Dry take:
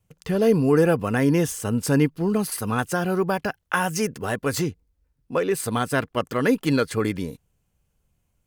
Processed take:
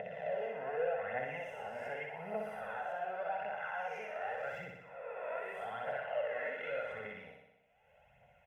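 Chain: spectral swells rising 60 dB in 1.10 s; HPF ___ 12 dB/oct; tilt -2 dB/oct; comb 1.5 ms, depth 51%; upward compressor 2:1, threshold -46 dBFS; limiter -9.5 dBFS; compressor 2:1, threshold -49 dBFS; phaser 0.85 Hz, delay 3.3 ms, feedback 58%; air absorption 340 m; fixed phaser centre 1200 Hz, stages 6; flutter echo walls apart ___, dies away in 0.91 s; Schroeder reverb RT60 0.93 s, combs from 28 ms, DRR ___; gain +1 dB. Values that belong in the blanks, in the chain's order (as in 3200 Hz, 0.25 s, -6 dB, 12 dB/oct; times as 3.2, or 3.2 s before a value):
700 Hz, 10.5 m, 20 dB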